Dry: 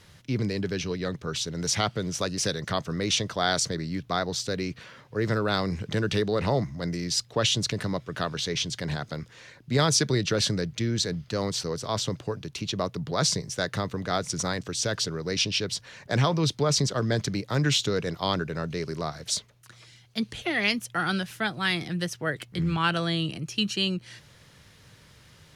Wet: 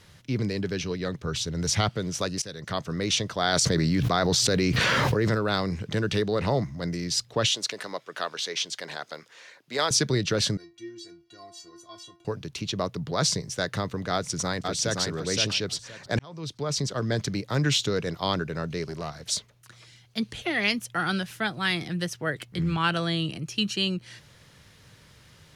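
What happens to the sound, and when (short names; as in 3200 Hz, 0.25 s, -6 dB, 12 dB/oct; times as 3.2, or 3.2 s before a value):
1.24–1.89 bell 77 Hz +8 dB 1.6 oct
2.42–3.01 fade in equal-power, from -18.5 dB
3.53–5.35 fast leveller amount 100%
7.48–9.91 HPF 480 Hz
10.57–12.25 metallic resonator 340 Hz, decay 0.34 s, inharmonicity 0.008
14.12–15.01 echo throw 0.52 s, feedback 20%, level -4 dB
16.19–17.55 fade in equal-power
18.86–19.29 tube stage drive 25 dB, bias 0.4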